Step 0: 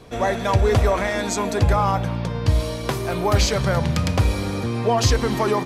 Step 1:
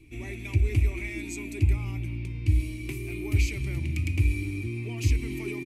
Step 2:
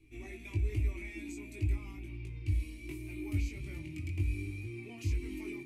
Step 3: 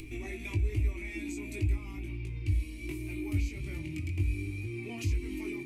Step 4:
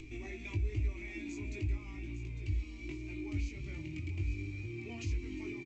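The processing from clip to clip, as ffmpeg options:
ffmpeg -i in.wav -af "firequalizer=gain_entry='entry(100,0);entry(190,-18);entry(320,4);entry(480,-29);entry(870,-27);entry(1600,-26);entry(2300,4);entry(3300,-14);entry(5100,-15);entry(8600,-5)':delay=0.05:min_phase=1,volume=-3.5dB" out.wav
ffmpeg -i in.wav -filter_complex "[0:a]flanger=delay=19:depth=2.5:speed=1.3,acrossover=split=1000[link_01][link_02];[link_02]alimiter=level_in=9.5dB:limit=-24dB:level=0:latency=1:release=234,volume=-9.5dB[link_03];[link_01][link_03]amix=inputs=2:normalize=0,flanger=delay=2.4:depth=1.3:regen=66:speed=0.43:shape=triangular,volume=-1.5dB" out.wav
ffmpeg -i in.wav -af "acompressor=mode=upward:threshold=-34dB:ratio=2.5,volume=2.5dB" out.wav
ffmpeg -i in.wav -af "aecho=1:1:852:0.251,volume=-4.5dB" -ar 16000 -c:a g722 out.g722

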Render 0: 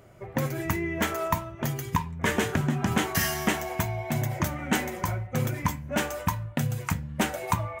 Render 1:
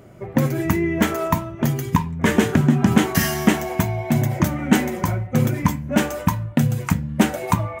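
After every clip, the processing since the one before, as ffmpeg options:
ffmpeg -i in.wav -af "equalizer=frequency=230:width=0.82:gain=8.5,volume=4dB" out.wav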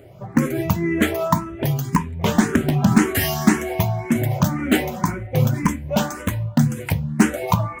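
ffmpeg -i in.wav -filter_complex "[0:a]asplit=2[link_01][link_02];[link_02]aeval=exprs='(mod(2*val(0)+1,2)-1)/2':channel_layout=same,volume=-11dB[link_03];[link_01][link_03]amix=inputs=2:normalize=0,asplit=2[link_04][link_05];[link_05]afreqshift=1.9[link_06];[link_04][link_06]amix=inputs=2:normalize=1,volume=1dB" out.wav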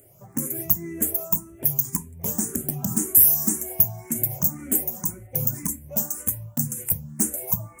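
ffmpeg -i in.wav -filter_complex "[0:a]acrossover=split=700|7000[link_01][link_02][link_03];[link_02]acompressor=threshold=-35dB:ratio=6[link_04];[link_01][link_04][link_03]amix=inputs=3:normalize=0,aexciter=amount=15.5:drive=4.3:freq=6000,volume=-12.5dB" out.wav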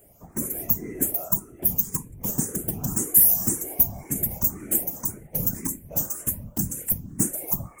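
ffmpeg -i in.wav -af "afftfilt=real='hypot(re,im)*cos(2*PI*random(0))':imag='hypot(re,im)*sin(2*PI*random(1))':win_size=512:overlap=0.75,volume=5dB" out.wav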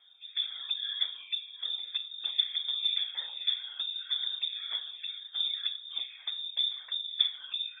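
ffmpeg -i in.wav -af "asuperstop=centerf=720:order=4:qfactor=1.1,bandreject=frequency=103.3:width_type=h:width=4,bandreject=frequency=206.6:width_type=h:width=4,bandreject=frequency=309.9:width_type=h:width=4,bandreject=frequency=413.2:width_type=h:width=4,bandreject=frequency=516.5:width_type=h:width=4,bandreject=frequency=619.8:width_type=h:width=4,bandreject=frequency=723.1:width_type=h:width=4,bandreject=frequency=826.4:width_type=h:width=4,bandreject=frequency=929.7:width_type=h:width=4,bandreject=frequency=1033:width_type=h:width=4,bandreject=frequency=1136.3:width_type=h:width=4,bandreject=frequency=1239.6:width_type=h:width=4,bandreject=frequency=1342.9:width_type=h:width=4,bandreject=frequency=1446.2:width_type=h:width=4,bandreject=frequency=1549.5:width_type=h:width=4,lowpass=frequency=3100:width_type=q:width=0.5098,lowpass=frequency=3100:width_type=q:width=0.6013,lowpass=frequency=3100:width_type=q:width=0.9,lowpass=frequency=3100:width_type=q:width=2.563,afreqshift=-3700" out.wav

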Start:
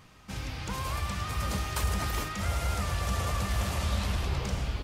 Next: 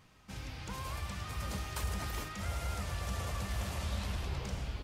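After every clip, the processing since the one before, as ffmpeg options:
ffmpeg -i in.wav -af "bandreject=frequency=1200:width=26,volume=-7dB" out.wav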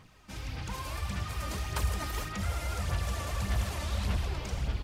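ffmpeg -i in.wav -af "aphaser=in_gain=1:out_gain=1:delay=3.4:decay=0.43:speed=1.7:type=sinusoidal,volume=2.5dB" out.wav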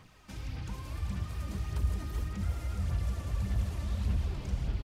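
ffmpeg -i in.wav -filter_complex "[0:a]acrossover=split=360[link_01][link_02];[link_02]acompressor=threshold=-50dB:ratio=5[link_03];[link_01][link_03]amix=inputs=2:normalize=0,aecho=1:1:388:0.398" out.wav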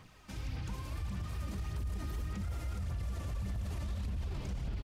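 ffmpeg -i in.wav -af "alimiter=level_in=7dB:limit=-24dB:level=0:latency=1:release=26,volume=-7dB" out.wav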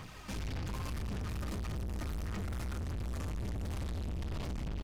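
ffmpeg -i in.wav -af "aeval=exprs='(tanh(224*val(0)+0.35)-tanh(0.35))/224':channel_layout=same,volume=11dB" out.wav

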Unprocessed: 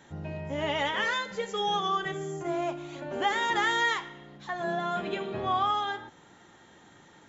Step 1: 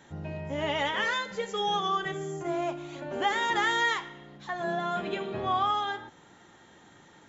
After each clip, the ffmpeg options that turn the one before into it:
ffmpeg -i in.wav -af anull out.wav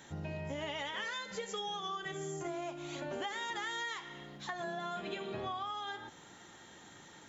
ffmpeg -i in.wav -af "highshelf=frequency=3100:gain=8.5,acompressor=threshold=-35dB:ratio=10,volume=-1.5dB" out.wav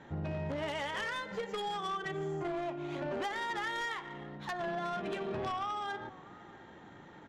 ffmpeg -i in.wav -filter_complex "[0:a]asplit=2[link_01][link_02];[link_02]adelay=641.4,volume=-19dB,highshelf=frequency=4000:gain=-14.4[link_03];[link_01][link_03]amix=inputs=2:normalize=0,adynamicsmooth=sensitivity=6:basefreq=1700,aeval=exprs='0.0376*(cos(1*acos(clip(val(0)/0.0376,-1,1)))-cos(1*PI/2))+0.00376*(cos(4*acos(clip(val(0)/0.0376,-1,1)))-cos(4*PI/2))+0.0133*(cos(5*acos(clip(val(0)/0.0376,-1,1)))-cos(5*PI/2))+0.00188*(cos(6*acos(clip(val(0)/0.0376,-1,1)))-cos(6*PI/2))+0.00531*(cos(7*acos(clip(val(0)/0.0376,-1,1)))-cos(7*PI/2))':channel_layout=same" out.wav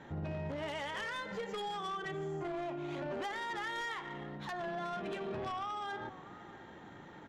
ffmpeg -i in.wav -af "alimiter=level_in=10.5dB:limit=-24dB:level=0:latency=1:release=22,volume=-10.5dB,volume=1dB" out.wav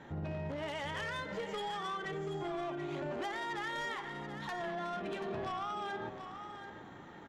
ffmpeg -i in.wav -af "aecho=1:1:733:0.335" out.wav

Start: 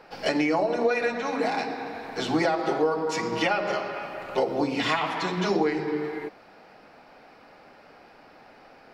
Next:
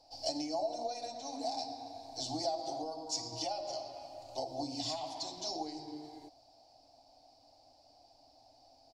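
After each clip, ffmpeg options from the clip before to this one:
ffmpeg -i in.wav -af "firequalizer=gain_entry='entry(120,0);entry(190,-29);entry(270,-4);entry(420,-21);entry(680,2);entry(1300,-29);entry(1800,-28);entry(4600,9);entry(7400,6);entry(12000,-4)':delay=0.05:min_phase=1,volume=-7dB" out.wav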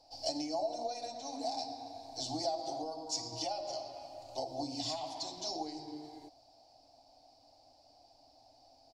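ffmpeg -i in.wav -af anull out.wav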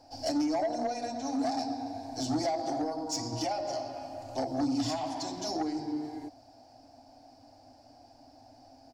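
ffmpeg -i in.wav -af "equalizer=frequency=100:width_type=o:width=0.67:gain=9,equalizer=frequency=250:width_type=o:width=0.67:gain=12,equalizer=frequency=1600:width_type=o:width=0.67:gain=11,equalizer=frequency=4000:width_type=o:width=0.67:gain=-8,asoftclip=type=tanh:threshold=-29dB,volume=5.5dB" out.wav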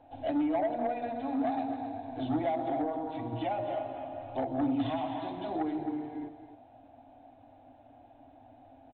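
ffmpeg -i in.wav -af "aecho=1:1:264:0.299,aresample=8000,aresample=44100" out.wav

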